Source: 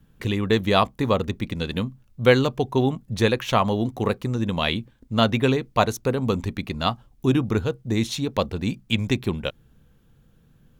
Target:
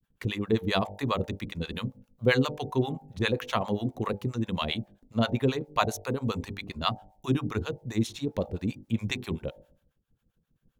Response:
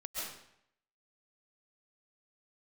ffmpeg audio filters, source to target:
-filter_complex "[0:a]agate=range=-33dB:threshold=-48dB:ratio=3:detection=peak,bandreject=f=49.96:t=h:w=4,bandreject=f=99.92:t=h:w=4,bandreject=f=149.88:t=h:w=4,bandreject=f=199.84:t=h:w=4,bandreject=f=249.8:t=h:w=4,bandreject=f=299.76:t=h:w=4,bandreject=f=349.72:t=h:w=4,bandreject=f=399.68:t=h:w=4,bandreject=f=449.64:t=h:w=4,bandreject=f=499.6:t=h:w=4,bandreject=f=549.56:t=h:w=4,bandreject=f=599.52:t=h:w=4,bandreject=f=649.48:t=h:w=4,bandreject=f=699.44:t=h:w=4,bandreject=f=749.4:t=h:w=4,bandreject=f=799.36:t=h:w=4,bandreject=f=849.32:t=h:w=4,bandreject=f=899.28:t=h:w=4,acrossover=split=650[a][b];[a]aeval=exprs='val(0)*(1-1/2+1/2*cos(2*PI*7.5*n/s))':c=same[c];[b]aeval=exprs='val(0)*(1-1/2-1/2*cos(2*PI*7.5*n/s))':c=same[d];[c][d]amix=inputs=2:normalize=0,volume=-1.5dB"

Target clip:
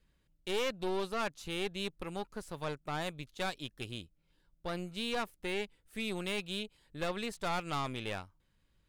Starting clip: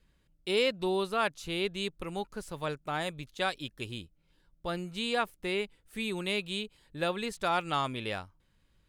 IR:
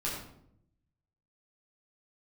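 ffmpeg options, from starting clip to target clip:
-af "aeval=exprs='(tanh(28.2*val(0)+0.7)-tanh(0.7))/28.2':c=same"

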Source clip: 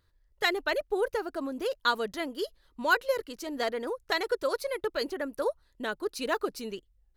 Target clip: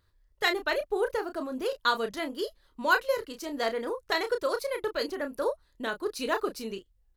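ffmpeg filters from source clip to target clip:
-filter_complex "[0:a]equalizer=f=1.1k:w=6.1:g=2.5,asplit=2[a][b];[b]adelay=31,volume=-8dB[c];[a][c]amix=inputs=2:normalize=0"

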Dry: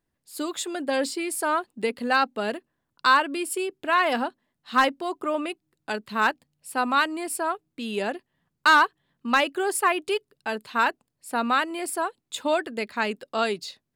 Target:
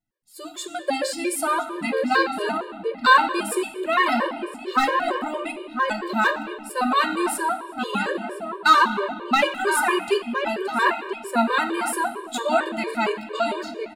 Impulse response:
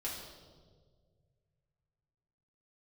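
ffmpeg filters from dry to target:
-filter_complex "[0:a]dynaudnorm=f=110:g=13:m=11.5dB,flanger=delay=9:depth=6.3:regen=67:speed=0.64:shape=sinusoidal,asplit=2[a][b];[b]adelay=1013,lowpass=f=1.6k:p=1,volume=-5.5dB,asplit=2[c][d];[d]adelay=1013,lowpass=f=1.6k:p=1,volume=0.32,asplit=2[e][f];[f]adelay=1013,lowpass=f=1.6k:p=1,volume=0.32,asplit=2[g][h];[h]adelay=1013,lowpass=f=1.6k:p=1,volume=0.32[i];[a][c][e][g][i]amix=inputs=5:normalize=0,asplit=2[j][k];[1:a]atrim=start_sample=2205,asetrate=31311,aresample=44100[l];[k][l]afir=irnorm=-1:irlink=0,volume=-8dB[m];[j][m]amix=inputs=2:normalize=0,afftfilt=real='re*gt(sin(2*PI*4.4*pts/sr)*(1-2*mod(floor(b*sr/1024/310),2)),0)':imag='im*gt(sin(2*PI*4.4*pts/sr)*(1-2*mod(floor(b*sr/1024/310),2)),0)':win_size=1024:overlap=0.75,volume=-1.5dB"

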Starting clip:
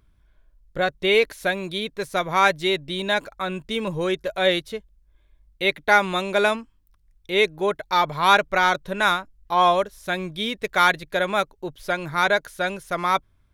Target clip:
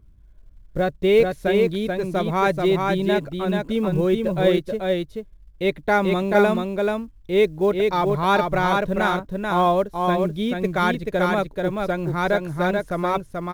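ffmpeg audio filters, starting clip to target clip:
-af "tiltshelf=f=660:g=9,aecho=1:1:434:0.668,acrusher=bits=9:mode=log:mix=0:aa=0.000001"

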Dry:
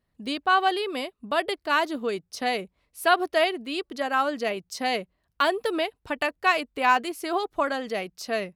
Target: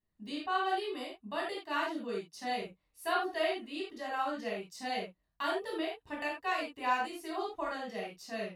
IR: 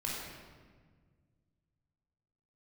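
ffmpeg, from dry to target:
-filter_complex "[0:a]asettb=1/sr,asplit=3[a][b][c];[a]atrim=end=1.434[d];[b]atrim=start=1.43:end=2.62,asetpts=PTS-STARTPTS,afade=t=in:d=0.004:c=qsin,afade=t=out:st=1.186:d=0.004:c=qsin,highpass=f=110:w=0.5412,highpass=f=110:w=1.3066[e];[c]atrim=start=2.616[f];[d][e]acrossfade=d=0.004:c1=hsin:c2=qsin[g];[g][f]acrossfade=d=0.004:c1=qsin:c2=hsin[h];[1:a]atrim=start_sample=2205,afade=t=out:st=0.23:d=0.01,atrim=end_sample=10584,asetrate=79380,aresample=44100[i];[h][i]afir=irnorm=-1:irlink=0,volume=-8dB"

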